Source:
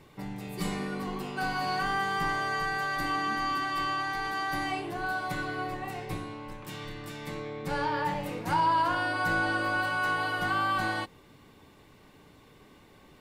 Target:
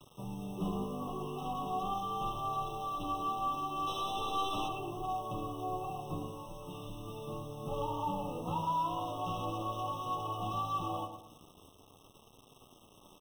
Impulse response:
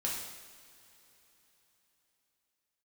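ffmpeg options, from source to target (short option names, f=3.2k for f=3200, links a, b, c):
-filter_complex "[0:a]acrossover=split=2500[a][b];[b]acompressor=threshold=-57dB:ratio=4:attack=1:release=60[c];[a][c]amix=inputs=2:normalize=0,acrossover=split=210|2100[d][e][f];[e]alimiter=level_in=2dB:limit=-24dB:level=0:latency=1:release=27,volume=-2dB[g];[d][g][f]amix=inputs=3:normalize=0,asettb=1/sr,asplit=3[h][i][j];[h]atrim=end=3.874[k];[i]atrim=start=3.87:end=4.68,asetpts=PTS-STARTPTS,afade=t=in:d=0.004:c=qsin,afade=t=out:st=0.806:d=0.004:c=qsin,acontrast=26[l];[j]atrim=start=4.676[m];[k][l]acrossfade=d=0.004:c1=hsin:c2=qsin[n];[n][m]acrossfade=d=0.004:c1=qsin:c2=hsin,aeval=exprs='0.0473*(abs(mod(val(0)/0.0473+3,4)-2)-1)':c=same,flanger=delay=7.5:depth=5.9:regen=1:speed=0.4:shape=triangular,acrusher=bits=8:mix=0:aa=0.000001,asplit=2[o][p];[p]adelay=111,lowpass=f=2k:p=1,volume=-7.5dB,asplit=2[q][r];[r]adelay=111,lowpass=f=2k:p=1,volume=0.4,asplit=2[s][t];[t]adelay=111,lowpass=f=2k:p=1,volume=0.4,asplit=2[u][v];[v]adelay=111,lowpass=f=2k:p=1,volume=0.4,asplit=2[w][x];[x]adelay=111,lowpass=f=2k:p=1,volume=0.4[y];[q][s][u][w][y]amix=inputs=5:normalize=0[z];[o][z]amix=inputs=2:normalize=0,afftfilt=real='re*eq(mod(floor(b*sr/1024/1300),2),0)':imag='im*eq(mod(floor(b*sr/1024/1300),2),0)':win_size=1024:overlap=0.75"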